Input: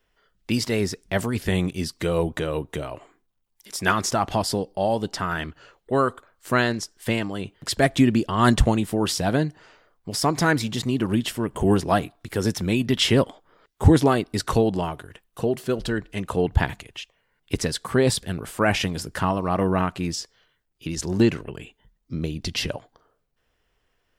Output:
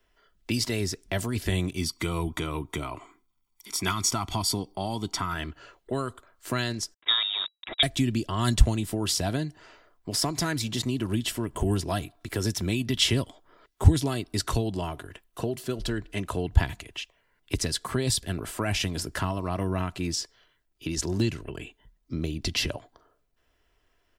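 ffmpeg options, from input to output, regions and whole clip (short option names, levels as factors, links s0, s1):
-filter_complex "[0:a]asettb=1/sr,asplit=3[s0][s1][s2];[s0]atrim=end=1.774[s3];[s1]atrim=start=1.77:end=5.34,asetpts=PTS-STARTPTS,afade=t=in:d=0.004:c=qsin,afade=t=out:st=3.566:d=0.004:c=qsin,lowshelf=f=130:g=-6.5,aecho=1:1:0.9:0.66,atrim=end_sample=157437[s4];[s2]atrim=start=5.336[s5];[s3][s4]acrossfade=d=0.004:c1=hsin:c2=qsin[s6];[s6][s5]acrossfade=d=0.004:c1=qsin:c2=hsin,asettb=1/sr,asplit=3[s7][s8][s9];[s7]atrim=end=6.944[s10];[s8]atrim=start=6.94:end=7.83,asetpts=PTS-STARTPTS,afade=t=in:d=0.004:c=qsin,afade=t=out:st=0.886:d=0.004:c=qsin,aeval=exprs='val(0)*gte(abs(val(0)),0.0211)':c=same,lowpass=f=3300:t=q:w=0.5098,lowpass=f=3300:t=q:w=0.6013,lowpass=f=3300:t=q:w=0.9,lowpass=f=3300:t=q:w=2.563,afreqshift=-3900[s11];[s9]atrim=start=7.826[s12];[s10][s11]acrossfade=d=0.004:c1=hsin:c2=qsin[s13];[s13][s12]acrossfade=d=0.004:c1=qsin:c2=hsin,aecho=1:1:3:0.34,acrossover=split=160|3000[s14][s15][s16];[s15]acompressor=threshold=0.0316:ratio=4[s17];[s14][s17][s16]amix=inputs=3:normalize=0"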